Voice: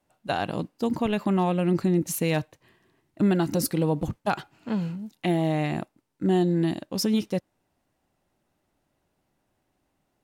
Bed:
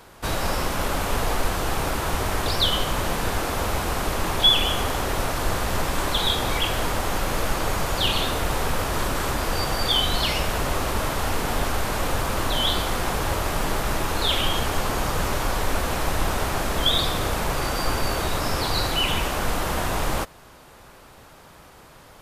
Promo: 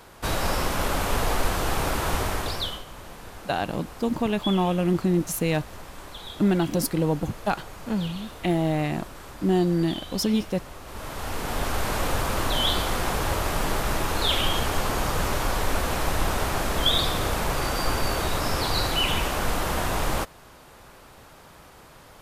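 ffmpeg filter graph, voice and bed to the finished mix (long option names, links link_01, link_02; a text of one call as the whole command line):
ffmpeg -i stem1.wav -i stem2.wav -filter_complex "[0:a]adelay=3200,volume=0.5dB[link_01];[1:a]volume=15.5dB,afade=type=out:start_time=2.16:duration=0.67:silence=0.149624,afade=type=in:start_time=10.84:duration=1.04:silence=0.158489[link_02];[link_01][link_02]amix=inputs=2:normalize=0" out.wav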